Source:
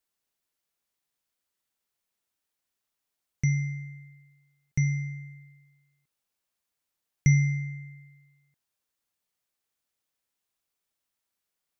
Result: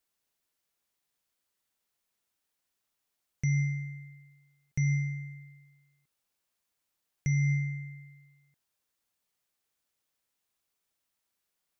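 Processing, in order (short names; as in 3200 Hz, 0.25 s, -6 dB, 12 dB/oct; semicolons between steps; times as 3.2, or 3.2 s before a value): limiter -22.5 dBFS, peak gain reduction 11.5 dB; gain +1.5 dB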